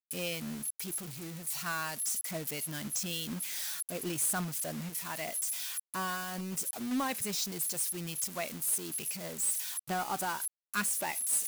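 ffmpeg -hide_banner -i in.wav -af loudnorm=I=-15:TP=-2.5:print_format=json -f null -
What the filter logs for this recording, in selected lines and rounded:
"input_i" : "-33.1",
"input_tp" : "-18.2",
"input_lra" : "2.9",
"input_thresh" : "-43.1",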